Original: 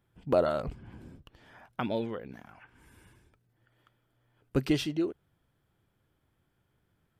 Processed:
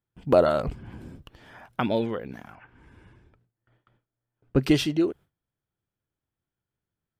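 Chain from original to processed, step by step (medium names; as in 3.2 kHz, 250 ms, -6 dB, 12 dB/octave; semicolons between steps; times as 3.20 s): gate with hold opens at -56 dBFS; 2.55–4.62 s: tape spacing loss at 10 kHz 22 dB; trim +6.5 dB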